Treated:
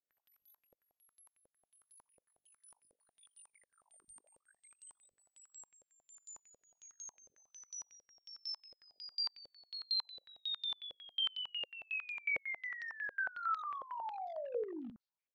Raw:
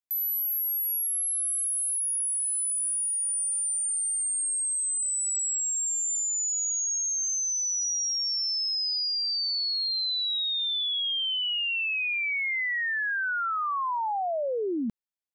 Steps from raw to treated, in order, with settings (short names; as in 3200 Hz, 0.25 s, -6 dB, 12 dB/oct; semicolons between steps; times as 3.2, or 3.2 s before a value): limiter -37 dBFS, peak gain reduction 11.5 dB; on a send: early reflections 16 ms -16.5 dB, 62 ms -9 dB; on the sum: hard clip -35.5 dBFS, distortion -26 dB; stepped low-pass 11 Hz 530–4400 Hz; gain -5.5 dB